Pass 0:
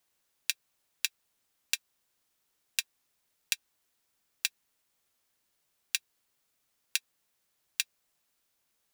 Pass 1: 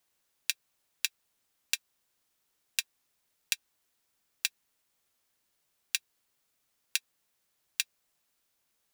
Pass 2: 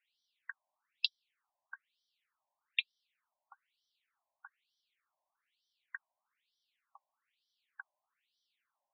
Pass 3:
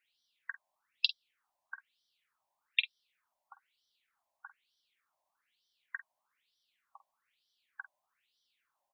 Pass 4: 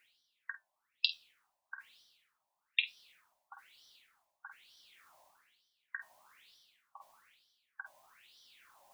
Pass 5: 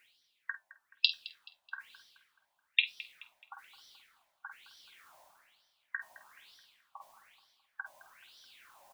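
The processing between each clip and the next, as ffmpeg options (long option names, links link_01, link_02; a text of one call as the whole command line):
ffmpeg -i in.wav -af anull out.wav
ffmpeg -i in.wav -af "equalizer=frequency=5200:width=3.4:gain=-4.5,afftfilt=real='re*between(b*sr/1024,750*pow(4300/750,0.5+0.5*sin(2*PI*1.1*pts/sr))/1.41,750*pow(4300/750,0.5+0.5*sin(2*PI*1.1*pts/sr))*1.41)':imag='im*between(b*sr/1024,750*pow(4300/750,0.5+0.5*sin(2*PI*1.1*pts/sr))/1.41,750*pow(4300/750,0.5+0.5*sin(2*PI*1.1*pts/sr))*1.41)':win_size=1024:overlap=0.75,volume=3dB" out.wav
ffmpeg -i in.wav -filter_complex "[0:a]asplit=2[link_01][link_02];[link_02]adelay=48,volume=-12.5dB[link_03];[link_01][link_03]amix=inputs=2:normalize=0,volume=3.5dB" out.wav
ffmpeg -i in.wav -af "areverse,acompressor=mode=upward:threshold=-45dB:ratio=2.5,areverse,flanger=delay=7.5:depth=8.5:regen=-66:speed=0.25:shape=sinusoidal,volume=3dB" out.wav
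ffmpeg -i in.wav -filter_complex "[0:a]asplit=2[link_01][link_02];[link_02]adelay=214,lowpass=frequency=4100:poles=1,volume=-17dB,asplit=2[link_03][link_04];[link_04]adelay=214,lowpass=frequency=4100:poles=1,volume=0.5,asplit=2[link_05][link_06];[link_06]adelay=214,lowpass=frequency=4100:poles=1,volume=0.5,asplit=2[link_07][link_08];[link_08]adelay=214,lowpass=frequency=4100:poles=1,volume=0.5[link_09];[link_01][link_03][link_05][link_07][link_09]amix=inputs=5:normalize=0,volume=4dB" out.wav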